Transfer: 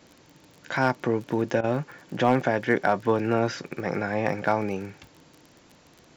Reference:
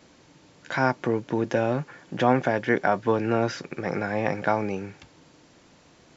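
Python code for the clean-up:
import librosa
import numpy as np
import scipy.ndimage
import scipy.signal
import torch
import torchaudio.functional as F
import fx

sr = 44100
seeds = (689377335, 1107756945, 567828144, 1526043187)

y = fx.fix_declip(x, sr, threshold_db=-10.0)
y = fx.fix_declick_ar(y, sr, threshold=6.5)
y = fx.fix_interpolate(y, sr, at_s=(1.61,), length_ms=26.0)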